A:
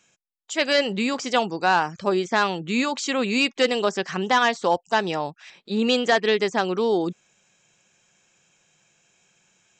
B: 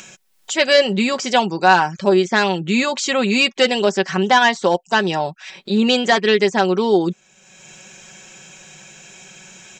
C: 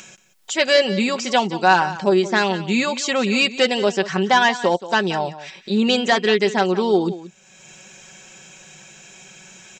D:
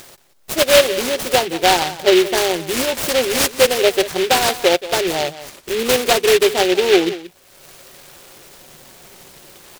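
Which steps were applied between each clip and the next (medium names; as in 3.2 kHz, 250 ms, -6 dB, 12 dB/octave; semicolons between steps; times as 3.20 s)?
band-stop 1.2 kHz, Q 12; comb 5.3 ms, depth 51%; in parallel at -2.5 dB: upward compressor, threshold -22 dBFS
delay 178 ms -15 dB; trim -2 dB
static phaser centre 490 Hz, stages 4; in parallel at -6.5 dB: decimation with a swept rate 10×, swing 60% 0.25 Hz; on the sum: delay time shaken by noise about 2.6 kHz, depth 0.13 ms; trim +2.5 dB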